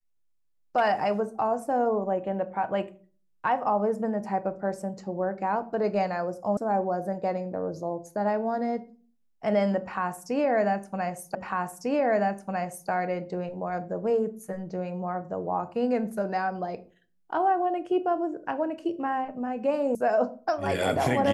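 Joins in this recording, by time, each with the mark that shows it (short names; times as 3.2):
6.57 sound cut off
11.35 repeat of the last 1.55 s
19.95 sound cut off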